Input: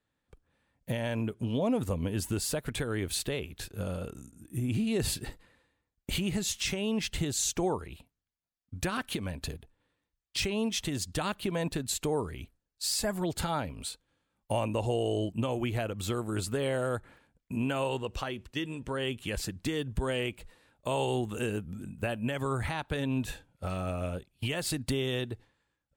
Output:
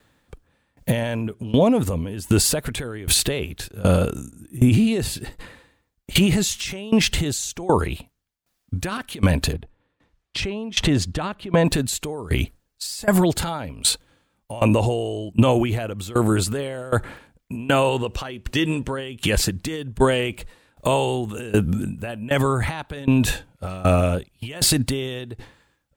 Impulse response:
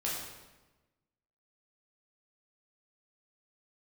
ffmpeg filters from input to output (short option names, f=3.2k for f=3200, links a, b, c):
-filter_complex "[0:a]asettb=1/sr,asplit=3[a][b][c];[a]atrim=end=9.534[d];[b]atrim=start=9.53:end=11.65,asetpts=PTS-STARTPTS,afade=t=in:d=0.004:c=qsin,afade=t=out:st=2.116:d=0.004:c=qsin,aemphasis=mode=reproduction:type=75fm[e];[c]atrim=start=11.646[f];[d][e]acrossfade=d=0.004:c1=hsin:c2=qsin[g];[g][f]acrossfade=d=0.004:c1=qsin:c2=hsin,alimiter=level_in=28dB:limit=-1dB:release=50:level=0:latency=1,aeval=exprs='val(0)*pow(10,-20*if(lt(mod(1.3*n/s,1),2*abs(1.3)/1000),1-mod(1.3*n/s,1)/(2*abs(1.3)/1000),(mod(1.3*n/s,1)-2*abs(1.3)/1000)/(1-2*abs(1.3)/1000))/20)':c=same,volume=-5dB"